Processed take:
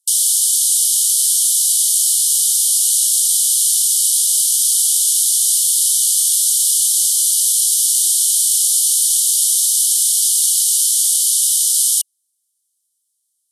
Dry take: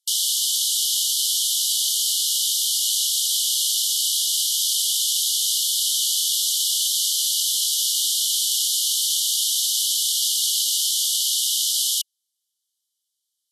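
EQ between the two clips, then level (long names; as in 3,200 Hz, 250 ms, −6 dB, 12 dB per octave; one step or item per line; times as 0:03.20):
bass and treble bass +10 dB, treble +14 dB
parametric band 9,300 Hz +9.5 dB 0.5 octaves
−9.5 dB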